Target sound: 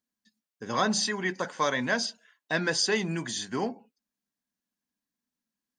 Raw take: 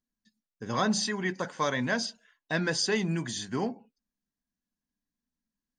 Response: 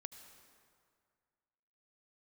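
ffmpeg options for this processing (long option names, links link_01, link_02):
-af "highpass=frequency=260:poles=1,volume=2.5dB"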